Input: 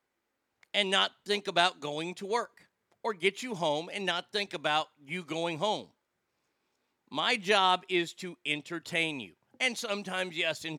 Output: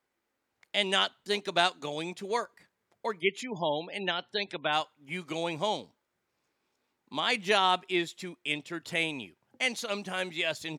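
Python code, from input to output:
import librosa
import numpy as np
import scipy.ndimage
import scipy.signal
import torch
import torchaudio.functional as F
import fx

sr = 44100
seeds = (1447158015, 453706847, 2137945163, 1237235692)

y = fx.spec_gate(x, sr, threshold_db=-25, keep='strong', at=(3.19, 4.72), fade=0.02)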